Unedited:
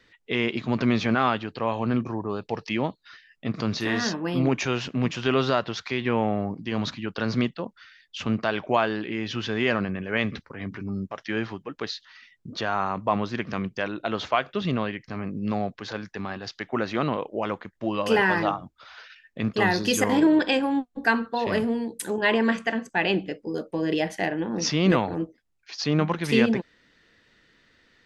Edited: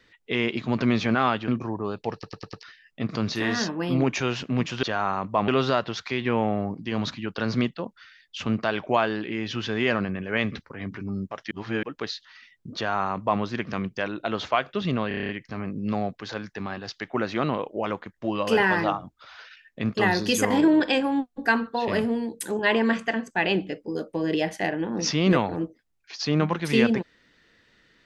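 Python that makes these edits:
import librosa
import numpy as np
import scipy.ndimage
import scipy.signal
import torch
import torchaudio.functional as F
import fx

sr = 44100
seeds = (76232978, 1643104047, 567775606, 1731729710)

y = fx.edit(x, sr, fx.cut(start_s=1.48, length_s=0.45),
    fx.stutter_over(start_s=2.58, slice_s=0.1, count=5),
    fx.reverse_span(start_s=11.31, length_s=0.32),
    fx.duplicate(start_s=12.56, length_s=0.65, to_s=5.28),
    fx.stutter(start_s=14.88, slice_s=0.03, count=8), tone=tone)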